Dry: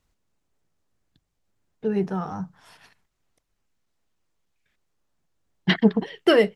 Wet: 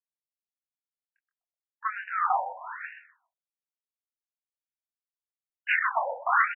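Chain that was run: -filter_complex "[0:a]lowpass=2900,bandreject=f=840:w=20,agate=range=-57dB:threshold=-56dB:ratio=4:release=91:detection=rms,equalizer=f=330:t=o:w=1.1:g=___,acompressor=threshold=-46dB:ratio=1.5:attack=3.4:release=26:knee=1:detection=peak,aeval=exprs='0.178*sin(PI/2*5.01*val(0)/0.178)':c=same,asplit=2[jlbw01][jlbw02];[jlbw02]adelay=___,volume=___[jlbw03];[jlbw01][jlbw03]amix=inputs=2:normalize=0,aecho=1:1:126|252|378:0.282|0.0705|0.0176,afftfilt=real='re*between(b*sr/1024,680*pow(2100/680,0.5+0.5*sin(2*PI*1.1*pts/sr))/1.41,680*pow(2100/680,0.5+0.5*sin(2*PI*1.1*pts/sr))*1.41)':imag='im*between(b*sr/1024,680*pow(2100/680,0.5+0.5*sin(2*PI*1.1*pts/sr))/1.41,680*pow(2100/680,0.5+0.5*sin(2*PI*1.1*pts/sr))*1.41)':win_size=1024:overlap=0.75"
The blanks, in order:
6, 24, -5dB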